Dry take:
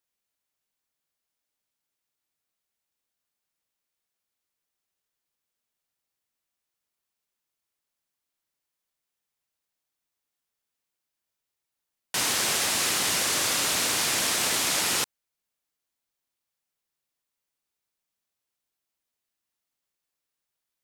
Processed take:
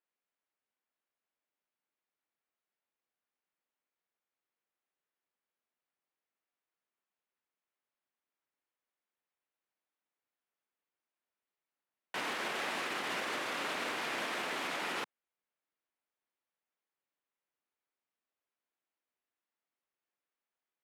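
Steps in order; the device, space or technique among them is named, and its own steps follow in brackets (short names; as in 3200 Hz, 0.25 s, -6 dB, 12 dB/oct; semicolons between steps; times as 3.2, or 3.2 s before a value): DJ mixer with the lows and highs turned down (three-band isolator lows -21 dB, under 190 Hz, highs -21 dB, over 2900 Hz; limiter -26 dBFS, peak gain reduction 6 dB); gain -2 dB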